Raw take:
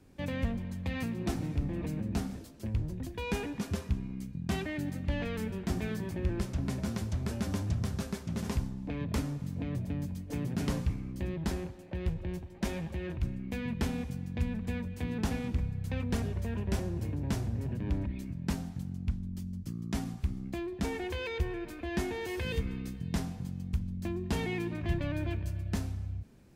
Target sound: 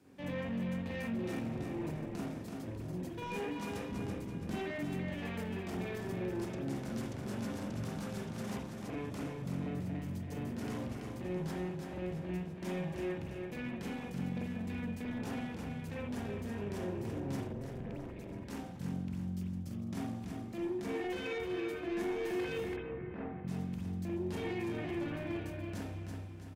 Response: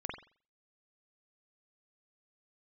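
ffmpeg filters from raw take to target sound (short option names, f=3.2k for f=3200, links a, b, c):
-filter_complex "[0:a]alimiter=level_in=4.5dB:limit=-24dB:level=0:latency=1:release=12,volume=-4.5dB,highpass=160,aecho=1:1:332|664|996|1328|1660:0.501|0.216|0.0927|0.0398|0.0171,asoftclip=type=tanh:threshold=-35dB,asettb=1/sr,asplit=3[a][b][c];[a]atrim=end=3.924[d];[b]atrim=start=3.92:end=4.51,asetpts=PTS-STARTPTS,afade=t=in:d=0.004:c=qsin,afade=t=out:st=0.586:d=0.004:c=qsin,lowshelf=f=470:g=7.5[e];[c]atrim=start=4.506[f];[d][e]acrossfade=d=0.004:c1=hsin:c2=qsin[g];[g][f]acrossfade=d=0.004:c1=qsin:c2=hsin,asettb=1/sr,asplit=3[h][i][j];[h]atrim=end=17.474[k];[i]atrim=start=17.47:end=18.29,asetpts=PTS-STARTPTS,afade=t=in:d=0.004:c=qsin,afade=t=out:st=0.816:d=0.004:c=qsin,tremolo=f=270:d=0.919[l];[j]atrim=start=18.286[m];[k][l]acrossfade=d=0.004:c1=hsin:c2=qsin[n];[n][m]acrossfade=d=0.004:c1=qsin:c2=hsin,asettb=1/sr,asplit=3[o][p][q];[o]atrim=end=22.764[r];[p]atrim=start=22.76:end=23.48,asetpts=PTS-STARTPTS,afade=t=in:d=0.004:c=qsin,afade=t=out:st=0.716:d=0.004:c=qsin,lowpass=f=2.1k:w=0.5412,lowpass=f=2.1k:w=1.3066[s];[q]atrim=start=23.476[t];[r][s]acrossfade=d=0.004:c1=hsin:c2=qsin[u];[u][t]acrossfade=d=0.004:c1=qsin:c2=hsin[v];[1:a]atrim=start_sample=2205,atrim=end_sample=3969[w];[v][w]afir=irnorm=-1:irlink=0,volume=1dB"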